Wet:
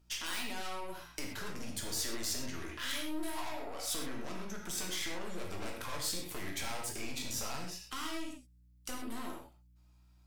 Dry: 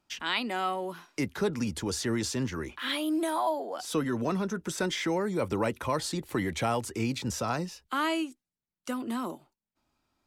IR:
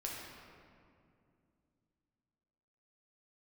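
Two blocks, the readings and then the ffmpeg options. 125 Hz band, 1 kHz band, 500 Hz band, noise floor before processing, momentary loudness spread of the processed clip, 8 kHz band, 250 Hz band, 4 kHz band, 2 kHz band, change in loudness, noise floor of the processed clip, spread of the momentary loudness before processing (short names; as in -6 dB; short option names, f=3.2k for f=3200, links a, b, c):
-13.5 dB, -11.5 dB, -13.5 dB, under -85 dBFS, 8 LU, 0.0 dB, -13.0 dB, -3.5 dB, -7.0 dB, -8.0 dB, -63 dBFS, 6 LU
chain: -filter_complex "[0:a]highshelf=f=4.8k:g=-8.5,aeval=exprs='(tanh(50.1*val(0)+0.7)-tanh(0.7))/50.1':c=same,acompressor=threshold=-40dB:ratio=6,aeval=exprs='val(0)+0.000708*(sin(2*PI*60*n/s)+sin(2*PI*2*60*n/s)/2+sin(2*PI*3*60*n/s)/3+sin(2*PI*4*60*n/s)/4+sin(2*PI*5*60*n/s)/5)':c=same,crystalizer=i=5:c=0[a];[1:a]atrim=start_sample=2205,atrim=end_sample=6174[b];[a][b]afir=irnorm=-1:irlink=0,volume=1dB"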